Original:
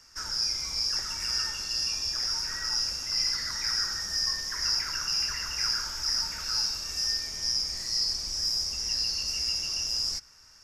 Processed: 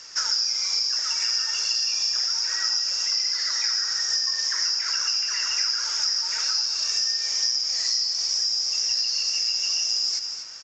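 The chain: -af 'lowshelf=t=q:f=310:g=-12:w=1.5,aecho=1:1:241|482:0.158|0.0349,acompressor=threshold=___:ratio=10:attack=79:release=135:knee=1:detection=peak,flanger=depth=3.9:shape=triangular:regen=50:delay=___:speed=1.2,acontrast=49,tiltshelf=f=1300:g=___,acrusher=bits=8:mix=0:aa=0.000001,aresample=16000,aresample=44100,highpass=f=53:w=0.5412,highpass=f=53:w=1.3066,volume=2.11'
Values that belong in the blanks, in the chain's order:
0.01, 1.7, -6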